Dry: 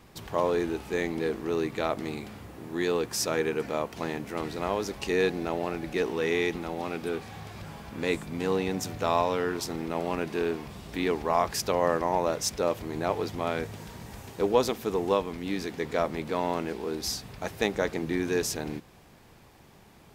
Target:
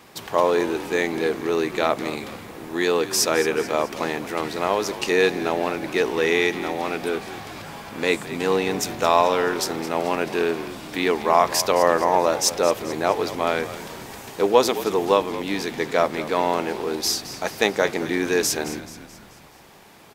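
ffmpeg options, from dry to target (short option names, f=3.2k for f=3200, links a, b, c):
-filter_complex "[0:a]highpass=f=400:p=1,asplit=6[a][b][c][d][e][f];[b]adelay=216,afreqshift=-58,volume=-14dB[g];[c]adelay=432,afreqshift=-116,volume=-20dB[h];[d]adelay=648,afreqshift=-174,volume=-26dB[i];[e]adelay=864,afreqshift=-232,volume=-32.1dB[j];[f]adelay=1080,afreqshift=-290,volume=-38.1dB[k];[a][g][h][i][j][k]amix=inputs=6:normalize=0,volume=9dB"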